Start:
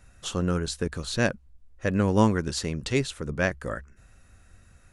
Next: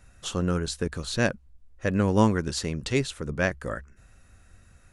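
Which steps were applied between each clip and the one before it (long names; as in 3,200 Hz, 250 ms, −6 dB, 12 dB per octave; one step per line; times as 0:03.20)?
no processing that can be heard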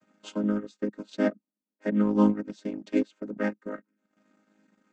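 channel vocoder with a chord as carrier major triad, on G#3
transient designer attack +1 dB, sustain −12 dB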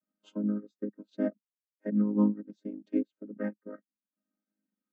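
downward compressor 1.5 to 1, threshold −28 dBFS, peak gain reduction 5 dB
every bin expanded away from the loudest bin 1.5 to 1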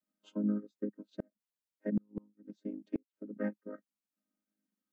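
gate with flip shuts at −20 dBFS, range −39 dB
level −1.5 dB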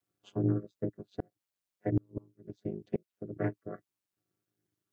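ring modulation 95 Hz
highs frequency-modulated by the lows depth 0.15 ms
level +6 dB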